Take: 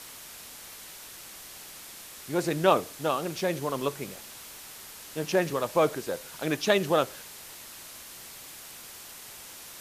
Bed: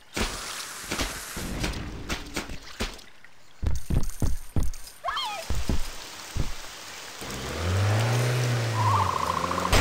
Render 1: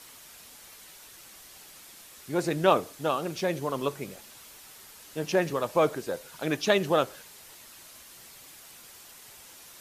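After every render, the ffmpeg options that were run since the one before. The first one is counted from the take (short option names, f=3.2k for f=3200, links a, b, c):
-af "afftdn=nr=6:nf=-46"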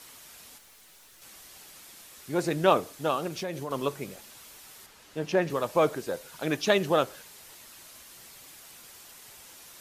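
-filter_complex "[0:a]asettb=1/sr,asplit=3[a][b][c];[a]atrim=end=0.584[d];[b]atrim=start=0.58:end=1.22,asetpts=PTS-STARTPTS,afade=t=in:d=0.004:c=qsin,afade=t=out:st=0.636:d=0.004:c=qsin,aeval=exprs='(tanh(398*val(0)+0.4)-tanh(0.4))/398':c=same[e];[c]atrim=start=1.216[f];[d][e]acrossfade=d=0.004:c1=hsin:c2=qsin[g];[g][f]acrossfade=d=0.004:c1=qsin:c2=hsin,asettb=1/sr,asplit=3[h][i][j];[h]atrim=end=3.274[k];[i]atrim=start=3.27:end=3.71,asetpts=PTS-STARTPTS,afade=t=in:d=0.004:c=qsin,afade=t=out:st=0.436:d=0.004:c=qsin,acompressor=threshold=-31dB:ratio=3:attack=3.2:release=140:knee=1:detection=peak[l];[j]atrim=start=3.706[m];[k][l]acrossfade=d=0.004:c1=hsin:c2=qsin[n];[n][m]acrossfade=d=0.004:c1=qsin:c2=hsin,asettb=1/sr,asplit=3[o][p][q];[o]atrim=end=4.864[r];[p]atrim=start=4.86:end=5.5,asetpts=PTS-STARTPTS,afade=t=in:d=0.004:c=qsin,afade=t=out:st=0.636:d=0.004:c=qsin,lowpass=f=3.6k:p=1[s];[q]atrim=start=5.496[t];[r][s]acrossfade=d=0.004:c1=hsin:c2=qsin[u];[u][t]acrossfade=d=0.004:c1=qsin:c2=hsin"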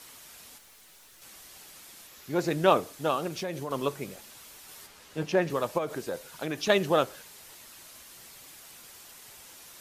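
-filter_complex "[0:a]asettb=1/sr,asplit=3[a][b][c];[a]atrim=end=2.074[d];[b]atrim=start=2.07:end=2.48,asetpts=PTS-STARTPTS,afade=t=in:d=0.004:c=qsin,afade=t=out:st=0.406:d=0.004:c=qsin,equalizer=f=8.9k:t=o:w=0.22:g=-13.5[e];[c]atrim=start=2.476[f];[d][e]acrossfade=d=0.004:c1=hsin:c2=qsin[g];[g][f]acrossfade=d=0.004:c1=qsin:c2=hsin,asettb=1/sr,asplit=3[h][i][j];[h]atrim=end=4.674[k];[i]atrim=start=4.67:end=5.23,asetpts=PTS-STARTPTS,afade=t=in:d=0.004:c=qsin,afade=t=out:st=0.556:d=0.004:c=qsin,asplit=2[l][m];[m]adelay=12,volume=-3dB[n];[l][n]amix=inputs=2:normalize=0,atrim=end_sample=24696[o];[j]atrim=start=5.226[p];[k][o]acrossfade=d=0.004:c1=hsin:c2=qsin[q];[q][p]acrossfade=d=0.004:c1=qsin:c2=hsin,asplit=3[r][s][t];[r]afade=t=out:st=5.77:d=0.02[u];[s]acompressor=threshold=-27dB:ratio=6:attack=3.2:release=140:knee=1:detection=peak,afade=t=in:st=5.77:d=0.02,afade=t=out:st=6.68:d=0.02[v];[t]afade=t=in:st=6.68:d=0.02[w];[u][v][w]amix=inputs=3:normalize=0"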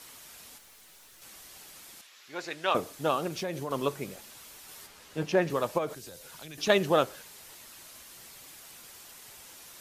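-filter_complex "[0:a]asettb=1/sr,asplit=3[a][b][c];[a]atrim=end=2.014[d];[b]atrim=start=2.01:end=2.75,asetpts=PTS-STARTPTS,afade=t=in:d=0.004:c=qsin,afade=t=out:st=0.736:d=0.004:c=qsin,bandpass=f=2.7k:t=q:w=0.62[e];[c]atrim=start=2.746[f];[d][e]acrossfade=d=0.004:c1=hsin:c2=qsin[g];[g][f]acrossfade=d=0.004:c1=qsin:c2=hsin,asettb=1/sr,asplit=3[h][i][j];[h]atrim=end=5.934[k];[i]atrim=start=5.93:end=6.58,asetpts=PTS-STARTPTS,afade=t=in:d=0.004:c=qsin,afade=t=out:st=0.646:d=0.004:c=qsin,acrossover=split=120|3000[l][m][n];[m]acompressor=threshold=-47dB:ratio=6:attack=3.2:release=140:knee=2.83:detection=peak[o];[l][o][n]amix=inputs=3:normalize=0[p];[j]atrim=start=6.576[q];[k][p]acrossfade=d=0.004:c1=hsin:c2=qsin[r];[r][q]acrossfade=d=0.004:c1=qsin:c2=hsin"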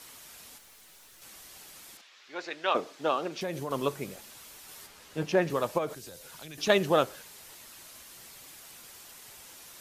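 -filter_complex "[0:a]asettb=1/sr,asplit=3[a][b][c];[a]atrim=end=1.974[d];[b]atrim=start=1.97:end=3.41,asetpts=PTS-STARTPTS,afade=t=in:d=0.004:c=qsin,afade=t=out:st=1.436:d=0.004:c=qsin,acrossover=split=210 6300:gain=0.112 1 0.141[e][f][g];[e][f][g]amix=inputs=3:normalize=0[h];[c]atrim=start=3.406[i];[d][h]acrossfade=d=0.004:c1=hsin:c2=qsin[j];[j][i]acrossfade=d=0.004:c1=qsin:c2=hsin"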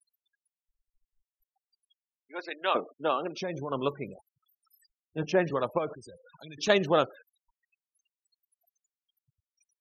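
-af "afftfilt=real='re*gte(hypot(re,im),0.01)':imag='im*gte(hypot(re,im),0.01)':win_size=1024:overlap=0.75"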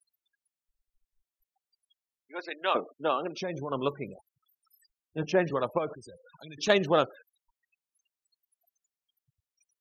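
-af "aeval=exprs='0.398*(cos(1*acos(clip(val(0)/0.398,-1,1)))-cos(1*PI/2))+0.01*(cos(4*acos(clip(val(0)/0.398,-1,1)))-cos(4*PI/2))+0.00562*(cos(6*acos(clip(val(0)/0.398,-1,1)))-cos(6*PI/2))':c=same"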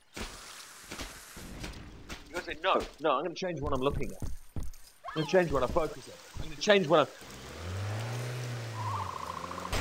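-filter_complex "[1:a]volume=-12dB[a];[0:a][a]amix=inputs=2:normalize=0"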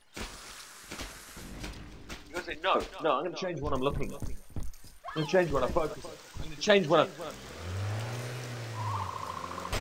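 -filter_complex "[0:a]asplit=2[a][b];[b]adelay=20,volume=-12dB[c];[a][c]amix=inputs=2:normalize=0,aecho=1:1:280:0.141"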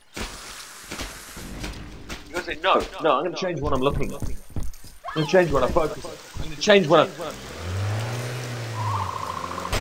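-af "volume=8dB,alimiter=limit=-2dB:level=0:latency=1"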